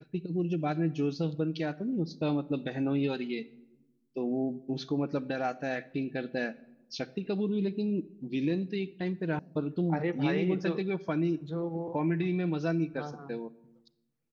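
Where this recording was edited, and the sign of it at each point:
0:09.39: cut off before it has died away

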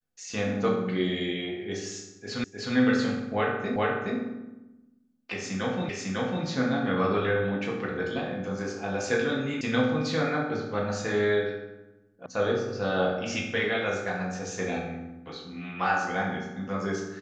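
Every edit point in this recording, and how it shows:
0:02.44: the same again, the last 0.31 s
0:03.76: the same again, the last 0.42 s
0:05.89: the same again, the last 0.55 s
0:09.61: cut off before it has died away
0:12.26: cut off before it has died away

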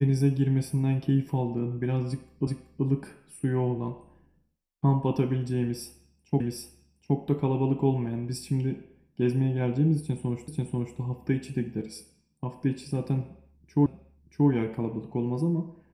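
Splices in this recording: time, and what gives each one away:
0:02.47: the same again, the last 0.38 s
0:06.40: the same again, the last 0.77 s
0:10.48: the same again, the last 0.49 s
0:13.86: the same again, the last 0.63 s

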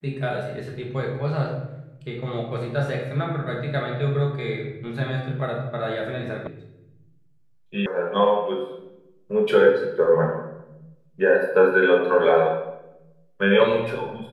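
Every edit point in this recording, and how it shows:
0:06.47: cut off before it has died away
0:07.86: cut off before it has died away

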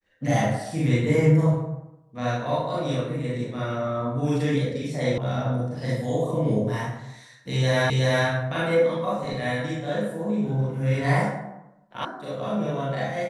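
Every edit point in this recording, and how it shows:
0:05.18: cut off before it has died away
0:07.90: the same again, the last 0.37 s
0:12.05: cut off before it has died away

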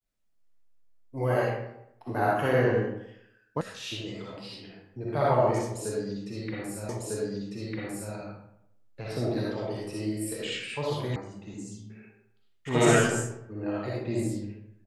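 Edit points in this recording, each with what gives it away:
0:03.61: cut off before it has died away
0:06.89: the same again, the last 1.25 s
0:11.16: cut off before it has died away

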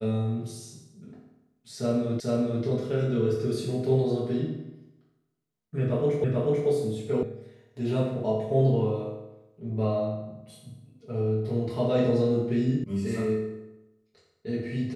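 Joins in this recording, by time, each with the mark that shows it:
0:02.20: the same again, the last 0.44 s
0:06.24: the same again, the last 0.44 s
0:07.23: cut off before it has died away
0:12.84: cut off before it has died away

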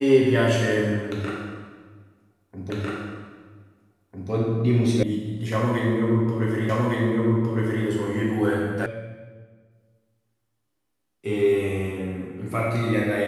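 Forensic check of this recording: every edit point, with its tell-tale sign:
0:02.70: the same again, the last 1.6 s
0:05.03: cut off before it has died away
0:06.69: the same again, the last 1.16 s
0:08.86: cut off before it has died away

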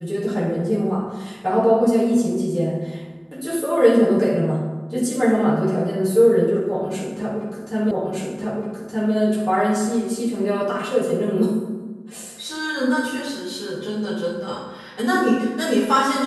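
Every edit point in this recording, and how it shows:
0:07.91: the same again, the last 1.22 s

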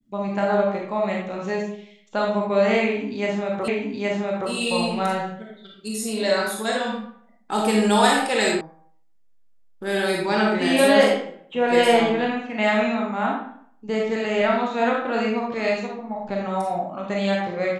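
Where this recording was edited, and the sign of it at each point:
0:03.68: the same again, the last 0.82 s
0:08.61: cut off before it has died away

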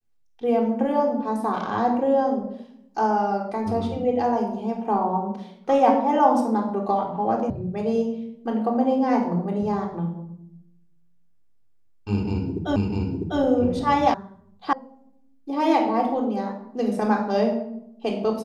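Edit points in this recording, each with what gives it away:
0:07.50: cut off before it has died away
0:12.76: the same again, the last 0.65 s
0:14.14: cut off before it has died away
0:14.73: cut off before it has died away

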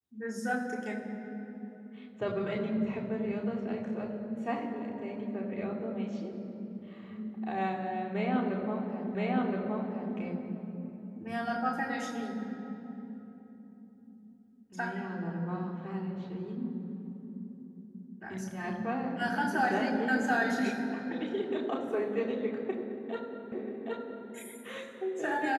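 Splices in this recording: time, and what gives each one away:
0:09.15: the same again, the last 1.02 s
0:23.52: the same again, the last 0.77 s

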